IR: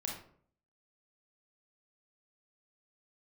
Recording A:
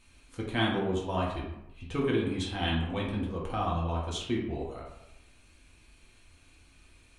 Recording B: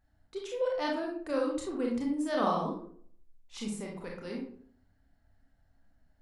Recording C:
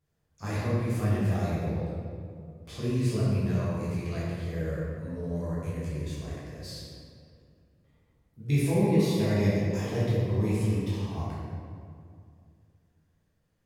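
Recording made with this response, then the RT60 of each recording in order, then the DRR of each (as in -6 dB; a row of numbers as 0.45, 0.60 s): B; 0.85, 0.55, 2.3 s; -4.0, -1.5, -9.5 dB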